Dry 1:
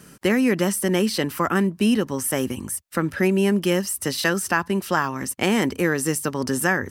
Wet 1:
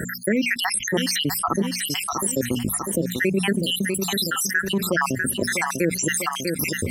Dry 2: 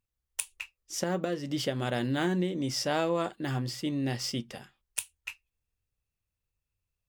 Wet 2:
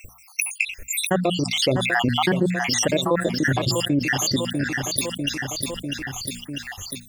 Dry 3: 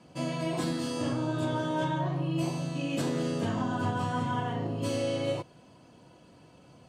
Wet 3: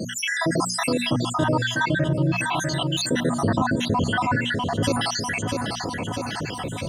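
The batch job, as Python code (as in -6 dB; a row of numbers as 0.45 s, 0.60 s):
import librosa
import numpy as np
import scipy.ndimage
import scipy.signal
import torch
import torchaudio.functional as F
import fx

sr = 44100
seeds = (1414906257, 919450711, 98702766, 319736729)

y = fx.spec_dropout(x, sr, seeds[0], share_pct=80)
y = fx.peak_eq(y, sr, hz=1800.0, db=5.0, octaves=0.42)
y = fx.hum_notches(y, sr, base_hz=60, count=4)
y = fx.echo_feedback(y, sr, ms=647, feedback_pct=38, wet_db=-14.5)
y = fx.env_flatten(y, sr, amount_pct=70)
y = y * 10.0 ** (-24 / 20.0) / np.sqrt(np.mean(np.square(y)))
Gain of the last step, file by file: -1.0 dB, +9.0 dB, +9.5 dB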